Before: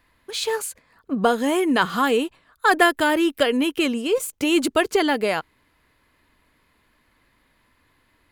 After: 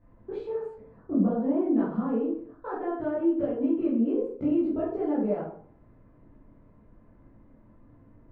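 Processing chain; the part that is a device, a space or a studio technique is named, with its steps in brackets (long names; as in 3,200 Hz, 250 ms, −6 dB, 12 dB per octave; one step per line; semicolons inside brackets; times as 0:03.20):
television next door (downward compressor 5 to 1, threshold −34 dBFS, peak gain reduction 19.5 dB; low-pass filter 460 Hz 12 dB per octave; convolution reverb RT60 0.55 s, pre-delay 13 ms, DRR −10 dB)
level +1.5 dB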